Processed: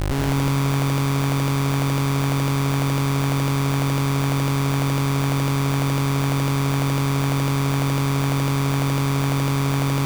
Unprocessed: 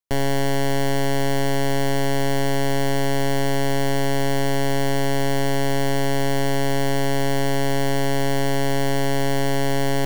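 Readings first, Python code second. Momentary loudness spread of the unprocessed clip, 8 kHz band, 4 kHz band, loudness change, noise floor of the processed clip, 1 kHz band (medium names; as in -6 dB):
0 LU, 0.0 dB, -1.0 dB, +1.5 dB, -21 dBFS, 0.0 dB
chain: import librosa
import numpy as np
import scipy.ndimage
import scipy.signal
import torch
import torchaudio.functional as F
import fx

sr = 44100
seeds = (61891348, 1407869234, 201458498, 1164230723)

y = fx.peak_eq(x, sr, hz=120.0, db=10.5, octaves=1.1)
y = fx.dmg_buzz(y, sr, base_hz=50.0, harmonics=16, level_db=-29.0, tilt_db=-2, odd_only=False)
y = fx.schmitt(y, sr, flips_db=-33.0)
y = fx.echo_feedback(y, sr, ms=182, feedback_pct=54, wet_db=-5.0)
y = y * librosa.db_to_amplitude(-4.5)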